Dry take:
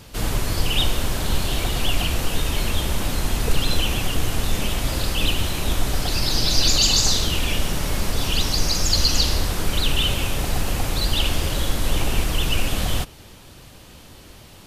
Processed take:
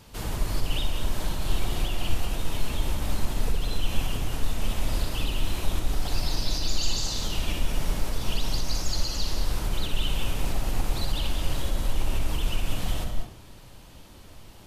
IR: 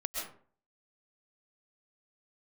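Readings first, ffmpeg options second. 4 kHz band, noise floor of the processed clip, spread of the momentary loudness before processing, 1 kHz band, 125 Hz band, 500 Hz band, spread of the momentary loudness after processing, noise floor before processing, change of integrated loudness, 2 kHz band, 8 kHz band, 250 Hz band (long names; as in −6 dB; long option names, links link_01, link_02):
−11.0 dB, −48 dBFS, 7 LU, −7.0 dB, −6.5 dB, −8.0 dB, 4 LU, −45 dBFS, −8.5 dB, −10.0 dB, −11.0 dB, −7.5 dB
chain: -filter_complex "[0:a]equalizer=frequency=920:width=3.3:gain=4,acompressor=threshold=-19dB:ratio=6,asplit=2[link_01][link_02];[1:a]atrim=start_sample=2205,lowshelf=frequency=410:gain=9.5,adelay=62[link_03];[link_02][link_03]afir=irnorm=-1:irlink=0,volume=-7.5dB[link_04];[link_01][link_04]amix=inputs=2:normalize=0,volume=-8dB"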